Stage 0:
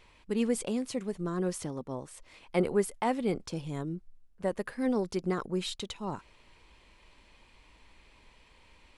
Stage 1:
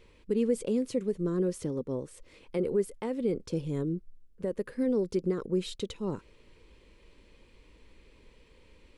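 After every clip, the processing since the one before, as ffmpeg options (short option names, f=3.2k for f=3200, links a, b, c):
-af "alimiter=limit=-24dB:level=0:latency=1:release=238,lowshelf=f=590:t=q:w=3:g=6,volume=-3dB"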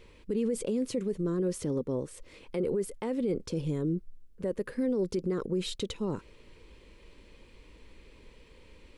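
-af "alimiter=level_in=2dB:limit=-24dB:level=0:latency=1:release=27,volume=-2dB,volume=3.5dB"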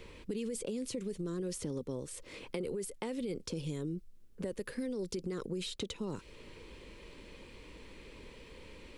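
-filter_complex "[0:a]acrossover=split=92|2500[a][b][c];[a]acompressor=threshold=-58dB:ratio=4[d];[b]acompressor=threshold=-43dB:ratio=4[e];[c]acompressor=threshold=-47dB:ratio=4[f];[d][e][f]amix=inputs=3:normalize=0,volume=5dB"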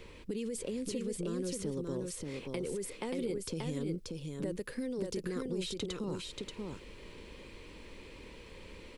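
-af "aecho=1:1:582:0.668"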